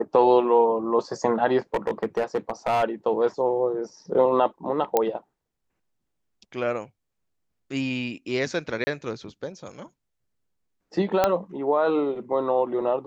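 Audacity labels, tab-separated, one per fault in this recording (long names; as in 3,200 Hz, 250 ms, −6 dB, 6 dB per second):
1.740000	2.840000	clipping −18.5 dBFS
4.970000	4.970000	click −7 dBFS
8.840000	8.870000	drop-out 30 ms
11.240000	11.240000	click −6 dBFS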